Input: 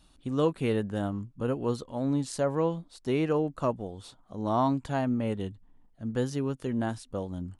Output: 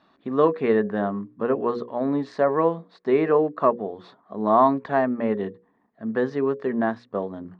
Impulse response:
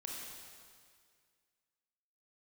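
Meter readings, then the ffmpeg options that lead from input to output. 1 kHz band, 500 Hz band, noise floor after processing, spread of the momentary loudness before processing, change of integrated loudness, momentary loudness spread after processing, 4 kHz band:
+10.0 dB, +8.5 dB, -64 dBFS, 9 LU, +7.0 dB, 11 LU, n/a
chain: -af "highpass=210,equalizer=f=210:t=q:w=4:g=7,equalizer=f=410:t=q:w=4:g=9,equalizer=f=670:t=q:w=4:g=7,equalizer=f=1.1k:t=q:w=4:g=9,equalizer=f=1.8k:t=q:w=4:g=10,equalizer=f=3k:t=q:w=4:g=-9,lowpass=f=3.8k:w=0.5412,lowpass=f=3.8k:w=1.3066,bandreject=f=60:t=h:w=6,bandreject=f=120:t=h:w=6,bandreject=f=180:t=h:w=6,bandreject=f=240:t=h:w=6,bandreject=f=300:t=h:w=6,bandreject=f=360:t=h:w=6,bandreject=f=420:t=h:w=6,bandreject=f=480:t=h:w=6,bandreject=f=540:t=h:w=6,volume=3dB"

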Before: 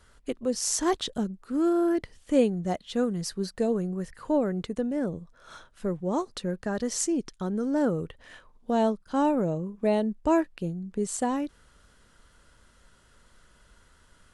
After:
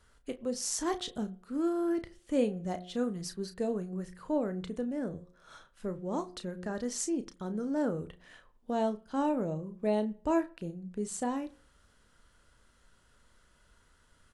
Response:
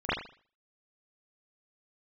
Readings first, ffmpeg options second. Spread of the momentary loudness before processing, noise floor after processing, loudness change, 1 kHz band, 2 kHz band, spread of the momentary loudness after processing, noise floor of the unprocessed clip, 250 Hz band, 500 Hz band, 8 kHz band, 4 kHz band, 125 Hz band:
9 LU, -66 dBFS, -6.0 dB, -6.0 dB, -6.0 dB, 9 LU, -60 dBFS, -6.0 dB, -6.0 dB, -6.0 dB, -6.0 dB, -6.5 dB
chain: -filter_complex "[0:a]asplit=2[a][b];[b]adelay=33,volume=-10.5dB[c];[a][c]amix=inputs=2:normalize=0,bandreject=f=180:t=h:w=4,bandreject=f=360:t=h:w=4,bandreject=f=540:t=h:w=4,bandreject=f=720:t=h:w=4,asplit=2[d][e];[1:a]atrim=start_sample=2205,asetrate=39690,aresample=44100[f];[e][f]afir=irnorm=-1:irlink=0,volume=-32.5dB[g];[d][g]amix=inputs=2:normalize=0,volume=-6.5dB"

